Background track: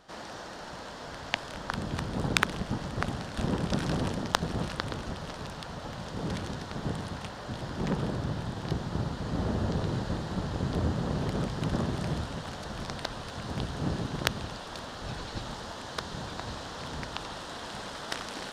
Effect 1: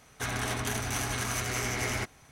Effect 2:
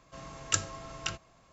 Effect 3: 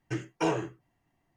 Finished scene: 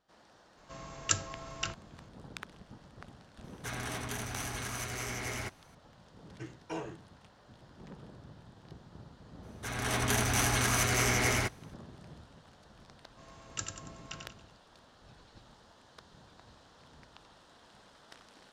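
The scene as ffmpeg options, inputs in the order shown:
ffmpeg -i bed.wav -i cue0.wav -i cue1.wav -i cue2.wav -filter_complex "[2:a]asplit=2[link_01][link_02];[1:a]asplit=2[link_03][link_04];[0:a]volume=-19.5dB[link_05];[link_04]dynaudnorm=framelen=180:gausssize=5:maxgain=12dB[link_06];[link_02]aecho=1:1:93|186|279|372|465:0.562|0.225|0.09|0.036|0.0144[link_07];[link_01]atrim=end=1.52,asetpts=PTS-STARTPTS,volume=-1dB,afade=type=in:duration=0.004:curve=hsin,afade=type=out:start_time=1.516:duration=0.004:curve=hsin,adelay=570[link_08];[link_03]atrim=end=2.31,asetpts=PTS-STARTPTS,volume=-6.5dB,afade=type=in:duration=0.004:curve=hsin,afade=type=out:start_time=2.306:duration=0.004:curve=hsin,adelay=3440[link_09];[3:a]atrim=end=1.36,asetpts=PTS-STARTPTS,volume=-11.5dB,afade=type=in:duration=0.004:curve=hsin,afade=type=out:start_time=1.356:duration=0.004:curve=hsin,adelay=6290[link_10];[link_06]atrim=end=2.31,asetpts=PTS-STARTPTS,volume=-8.5dB,afade=type=in:duration=0.004:curve=hsin,afade=type=out:start_time=2.306:duration=0.004:curve=hsin,adelay=9430[link_11];[link_07]atrim=end=1.52,asetpts=PTS-STARTPTS,volume=-10.5dB,afade=type=in:duration=0.004:curve=hsin,afade=type=out:start_time=1.516:duration=0.004:curve=hsin,adelay=13050[link_12];[link_05][link_08][link_09][link_10][link_11][link_12]amix=inputs=6:normalize=0" out.wav

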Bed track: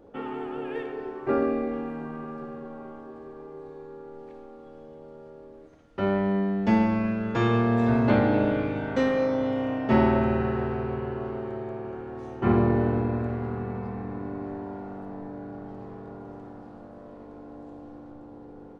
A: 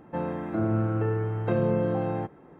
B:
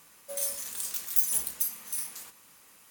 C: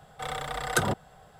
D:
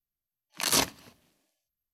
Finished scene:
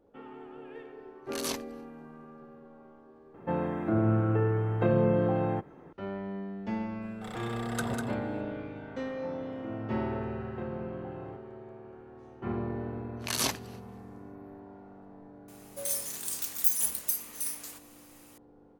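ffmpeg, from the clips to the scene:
ffmpeg -i bed.wav -i cue0.wav -i cue1.wav -i cue2.wav -i cue3.wav -filter_complex "[4:a]asplit=2[link_01][link_02];[1:a]asplit=2[link_03][link_04];[0:a]volume=-12.5dB[link_05];[3:a]aecho=1:1:154|198:0.178|0.531[link_06];[link_02]alimiter=level_in=14.5dB:limit=-1dB:release=50:level=0:latency=1[link_07];[link_01]atrim=end=1.93,asetpts=PTS-STARTPTS,volume=-11dB,afade=type=in:duration=0.004:curve=hsin,afade=type=out:start_time=1.926:duration=0.004:curve=hsin,adelay=720[link_08];[link_03]atrim=end=2.59,asetpts=PTS-STARTPTS,afade=type=in:duration=0.004:curve=hsin,afade=type=out:start_time=2.586:duration=0.004:curve=hsin,adelay=3340[link_09];[link_06]atrim=end=1.39,asetpts=PTS-STARTPTS,volume=-10.5dB,afade=type=in:duration=0.004:curve=hsin,afade=type=out:start_time=1.386:duration=0.004:curve=hsin,adelay=7020[link_10];[link_04]atrim=end=2.59,asetpts=PTS-STARTPTS,volume=-14dB,afade=type=in:duration=0.004:curve=hsin,afade=type=out:start_time=2.586:duration=0.004:curve=hsin,adelay=9100[link_11];[link_07]atrim=end=1.93,asetpts=PTS-STARTPTS,volume=-15dB,afade=type=in:duration=0.004:curve=hsin,afade=type=out:start_time=1.926:duration=0.004:curve=hsin,adelay=12670[link_12];[2:a]atrim=end=2.9,asetpts=PTS-STARTPTS,volume=-0.5dB,afade=type=in:duration=0.004:curve=hsin,afade=type=out:start_time=2.896:duration=0.004:curve=hsin,adelay=15480[link_13];[link_05][link_08][link_09][link_10][link_11][link_12][link_13]amix=inputs=7:normalize=0" out.wav

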